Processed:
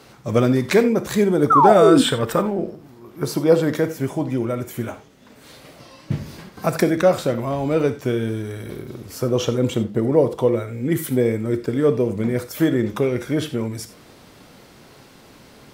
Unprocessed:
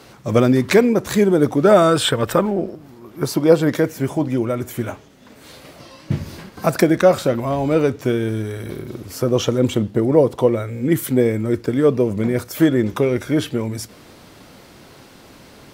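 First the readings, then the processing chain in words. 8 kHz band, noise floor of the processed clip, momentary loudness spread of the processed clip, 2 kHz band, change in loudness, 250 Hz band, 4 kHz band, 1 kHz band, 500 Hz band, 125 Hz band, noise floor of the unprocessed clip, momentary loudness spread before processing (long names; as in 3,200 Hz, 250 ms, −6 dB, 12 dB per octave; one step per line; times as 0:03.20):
−2.5 dB, −48 dBFS, 14 LU, −2.5 dB, −1.5 dB, −2.0 dB, −2.5 dB, +3.0 dB, −2.0 dB, −2.0 dB, −45 dBFS, 13 LU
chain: sound drawn into the spectrogram fall, 0:01.50–0:02.02, 240–1,400 Hz −10 dBFS
reverb whose tail is shaped and stops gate 110 ms flat, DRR 10 dB
level −3 dB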